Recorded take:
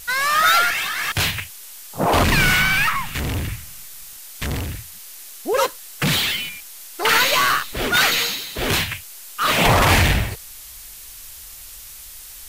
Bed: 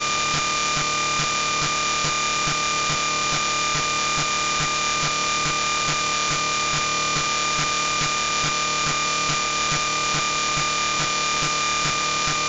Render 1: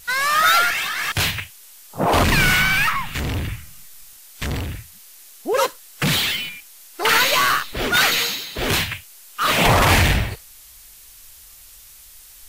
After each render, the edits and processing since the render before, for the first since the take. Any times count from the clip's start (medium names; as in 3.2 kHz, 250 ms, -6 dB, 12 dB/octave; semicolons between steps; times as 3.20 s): noise print and reduce 6 dB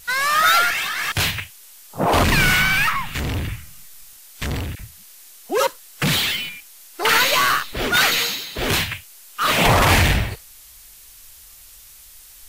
4.75–5.67 s: phase dispersion lows, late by 46 ms, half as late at 1.1 kHz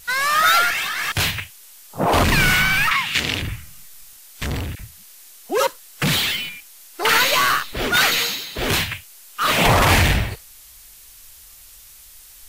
2.91–3.42 s: frequency weighting D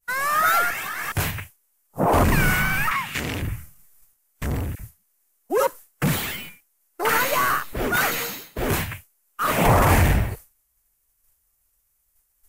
peaking EQ 3.8 kHz -14 dB 1.6 oct; expander -33 dBFS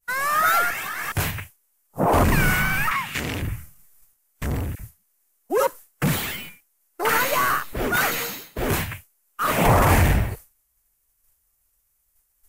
no audible change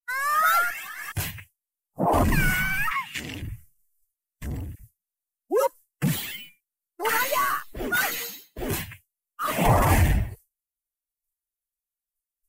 expander on every frequency bin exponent 1.5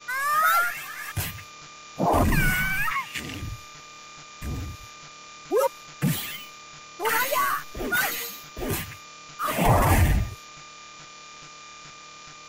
add bed -22 dB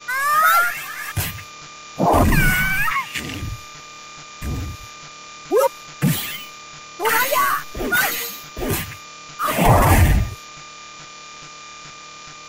trim +6 dB